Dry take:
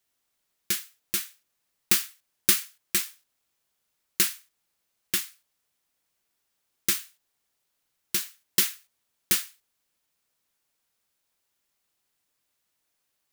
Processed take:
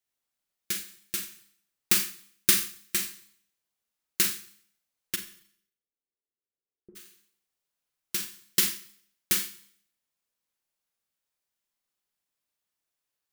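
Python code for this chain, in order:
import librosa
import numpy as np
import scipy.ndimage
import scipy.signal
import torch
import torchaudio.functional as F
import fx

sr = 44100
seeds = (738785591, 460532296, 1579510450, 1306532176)

y = fx.ladder_lowpass(x, sr, hz=490.0, resonance_pct=60, at=(5.15, 6.95), fade=0.02)
y = fx.rev_schroeder(y, sr, rt60_s=0.62, comb_ms=30, drr_db=3.0)
y = fx.upward_expand(y, sr, threshold_db=-36.0, expansion=1.5)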